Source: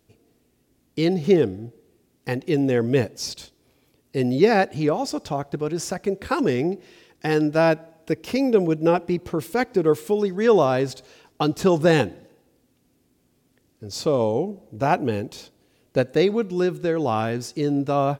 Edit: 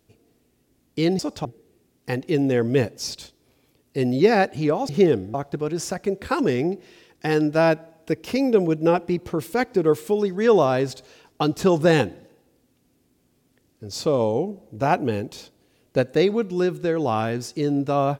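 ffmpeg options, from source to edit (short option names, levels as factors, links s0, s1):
-filter_complex "[0:a]asplit=5[s0][s1][s2][s3][s4];[s0]atrim=end=1.192[s5];[s1]atrim=start=5.078:end=5.342[s6];[s2]atrim=start=1.638:end=5.082[s7];[s3]atrim=start=1.188:end=1.642[s8];[s4]atrim=start=5.338[s9];[s5][s6]acrossfade=d=0.004:c1=hsin:c2=hsin[s10];[s10][s7]acrossfade=d=0.004:c1=hsin:c2=hsin[s11];[s11][s8]acrossfade=d=0.004:c1=hsin:c2=hsin[s12];[s12][s9]acrossfade=d=0.004:c1=hsin:c2=hsin"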